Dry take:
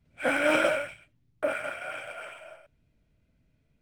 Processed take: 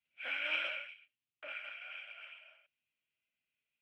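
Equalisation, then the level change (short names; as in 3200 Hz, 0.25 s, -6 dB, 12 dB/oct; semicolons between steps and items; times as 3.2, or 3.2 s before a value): band-pass 2800 Hz, Q 4.1; air absorption 96 m; +1.0 dB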